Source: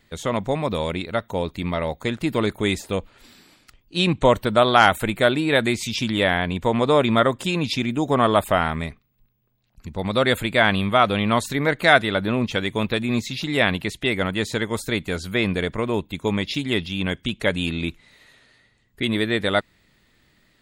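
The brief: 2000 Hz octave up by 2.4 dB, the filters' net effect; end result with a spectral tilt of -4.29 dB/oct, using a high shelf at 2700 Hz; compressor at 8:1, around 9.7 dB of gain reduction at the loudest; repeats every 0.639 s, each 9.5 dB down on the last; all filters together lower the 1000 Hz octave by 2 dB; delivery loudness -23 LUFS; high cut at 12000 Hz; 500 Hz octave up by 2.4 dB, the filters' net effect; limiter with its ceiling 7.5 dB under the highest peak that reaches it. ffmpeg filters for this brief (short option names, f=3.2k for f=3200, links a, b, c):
-af "lowpass=12k,equalizer=f=500:t=o:g=4.5,equalizer=f=1k:t=o:g=-6,equalizer=f=2k:t=o:g=6.5,highshelf=f=2.7k:g=-4.5,acompressor=threshold=-19dB:ratio=8,alimiter=limit=-16dB:level=0:latency=1,aecho=1:1:639|1278|1917|2556:0.335|0.111|0.0365|0.012,volume=4.5dB"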